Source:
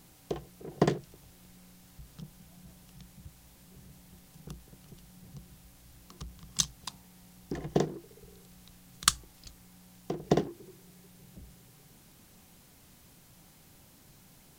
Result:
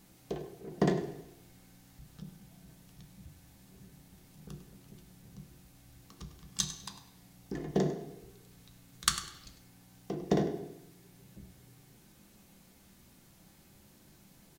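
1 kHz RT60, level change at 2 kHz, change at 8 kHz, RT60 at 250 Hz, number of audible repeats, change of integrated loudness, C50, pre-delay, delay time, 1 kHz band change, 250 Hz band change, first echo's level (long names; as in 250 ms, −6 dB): 0.80 s, −2.0 dB, −3.5 dB, 0.80 s, 1, −2.5 dB, 7.5 dB, 3 ms, 100 ms, −3.0 dB, 0.0 dB, −12.0 dB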